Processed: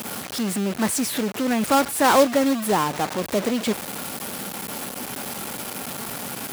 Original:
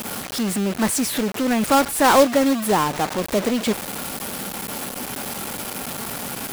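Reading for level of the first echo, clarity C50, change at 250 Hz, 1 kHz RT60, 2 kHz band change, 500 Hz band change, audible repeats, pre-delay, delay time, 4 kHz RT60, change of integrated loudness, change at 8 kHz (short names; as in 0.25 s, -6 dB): none, none, -2.0 dB, none, -2.0 dB, -2.0 dB, none, none, none, none, -2.0 dB, -2.0 dB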